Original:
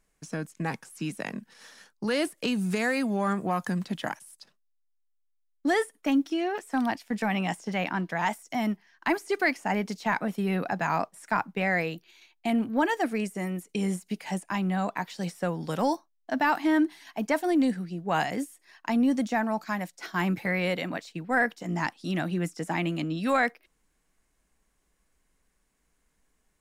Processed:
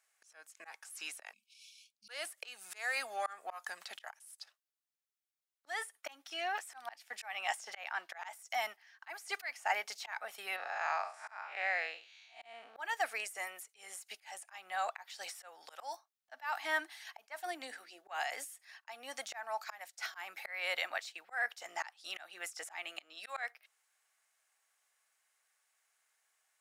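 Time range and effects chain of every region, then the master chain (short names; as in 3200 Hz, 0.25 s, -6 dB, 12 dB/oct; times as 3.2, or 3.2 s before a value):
1.33–2.09 brick-wall FIR band-stop 240–2200 Hz + high shelf 3900 Hz -7.5 dB
10.56–12.76 time blur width 0.159 s + Chebyshev low-pass 5600 Hz
17.46–18.27 resonant low shelf 170 Hz -13 dB, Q 3 + de-hum 91.97 Hz, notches 7 + compressor 4:1, threshold -19 dBFS
whole clip: HPF 750 Hz 24 dB/oct; notch 1000 Hz, Q 6.3; auto swell 0.301 s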